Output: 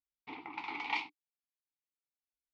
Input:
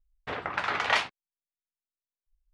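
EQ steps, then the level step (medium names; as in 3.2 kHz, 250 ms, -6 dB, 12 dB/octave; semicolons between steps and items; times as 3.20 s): vowel filter u; high-pass 42 Hz; peaking EQ 4.6 kHz +12.5 dB 1.3 oct; +1.5 dB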